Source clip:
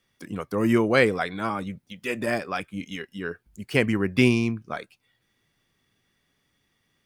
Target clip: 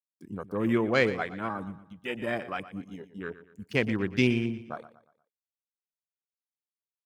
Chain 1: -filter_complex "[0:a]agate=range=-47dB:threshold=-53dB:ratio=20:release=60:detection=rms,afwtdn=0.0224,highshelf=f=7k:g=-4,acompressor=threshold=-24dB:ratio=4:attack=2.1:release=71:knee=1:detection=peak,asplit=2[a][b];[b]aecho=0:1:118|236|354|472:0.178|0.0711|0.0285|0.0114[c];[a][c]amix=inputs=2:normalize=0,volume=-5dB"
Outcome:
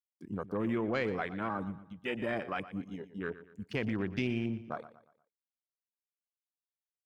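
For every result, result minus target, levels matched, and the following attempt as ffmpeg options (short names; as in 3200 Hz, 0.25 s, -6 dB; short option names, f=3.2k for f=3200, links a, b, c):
compressor: peak gain reduction +11 dB; 8000 Hz band -5.5 dB
-filter_complex "[0:a]agate=range=-47dB:threshold=-53dB:ratio=20:release=60:detection=rms,afwtdn=0.0224,highshelf=f=7k:g=-4,asplit=2[a][b];[b]aecho=0:1:118|236|354|472:0.178|0.0711|0.0285|0.0114[c];[a][c]amix=inputs=2:normalize=0,volume=-5dB"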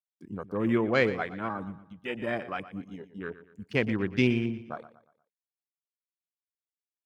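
8000 Hz band -5.0 dB
-filter_complex "[0:a]agate=range=-47dB:threshold=-53dB:ratio=20:release=60:detection=rms,afwtdn=0.0224,highshelf=f=7k:g=8,asplit=2[a][b];[b]aecho=0:1:118|236|354|472:0.178|0.0711|0.0285|0.0114[c];[a][c]amix=inputs=2:normalize=0,volume=-5dB"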